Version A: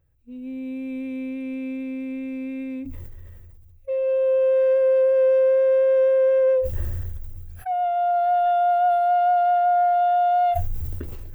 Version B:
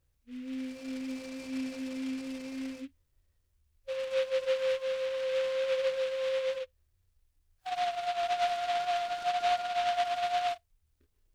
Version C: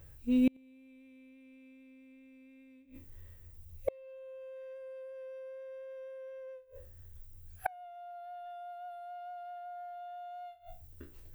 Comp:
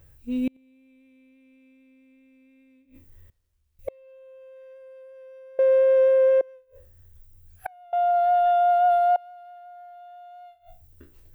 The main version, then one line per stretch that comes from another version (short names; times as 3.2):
C
3.3–3.79 from B
5.59–6.41 from A
7.93–9.16 from A